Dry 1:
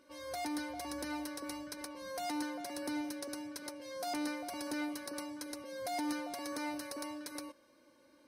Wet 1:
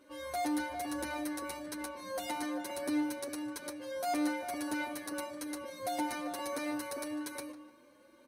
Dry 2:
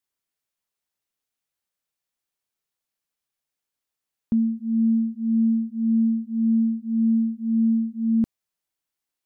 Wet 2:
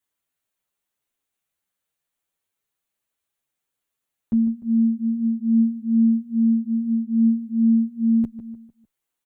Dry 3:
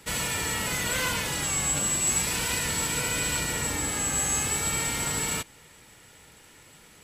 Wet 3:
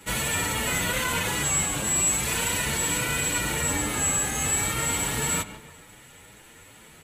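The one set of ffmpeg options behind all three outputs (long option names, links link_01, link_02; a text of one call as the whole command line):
ffmpeg -i in.wav -filter_complex "[0:a]equalizer=frequency=5100:width_type=o:width=0.39:gain=-8.5,alimiter=limit=-20.5dB:level=0:latency=1:release=11,asplit=2[link_01][link_02];[link_02]adelay=150,lowpass=frequency=2300:poles=1,volume=-11.5dB,asplit=2[link_03][link_04];[link_04]adelay=150,lowpass=frequency=2300:poles=1,volume=0.43,asplit=2[link_05][link_06];[link_06]adelay=150,lowpass=frequency=2300:poles=1,volume=0.43,asplit=2[link_07][link_08];[link_08]adelay=150,lowpass=frequency=2300:poles=1,volume=0.43[link_09];[link_01][link_03][link_05][link_07][link_09]amix=inputs=5:normalize=0,asplit=2[link_10][link_11];[link_11]adelay=7.9,afreqshift=2.4[link_12];[link_10][link_12]amix=inputs=2:normalize=1,volume=6.5dB" out.wav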